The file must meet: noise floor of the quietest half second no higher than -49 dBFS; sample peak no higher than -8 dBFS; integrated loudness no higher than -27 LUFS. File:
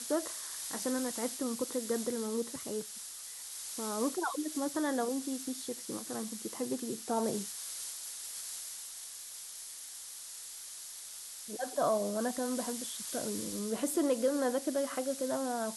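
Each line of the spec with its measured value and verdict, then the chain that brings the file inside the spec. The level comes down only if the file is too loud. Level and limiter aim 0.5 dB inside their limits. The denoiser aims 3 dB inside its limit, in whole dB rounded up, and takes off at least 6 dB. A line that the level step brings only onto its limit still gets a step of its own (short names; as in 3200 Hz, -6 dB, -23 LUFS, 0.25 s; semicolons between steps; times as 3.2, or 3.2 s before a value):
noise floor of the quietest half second -46 dBFS: fail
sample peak -19.0 dBFS: OK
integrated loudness -35.5 LUFS: OK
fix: denoiser 6 dB, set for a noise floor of -46 dBFS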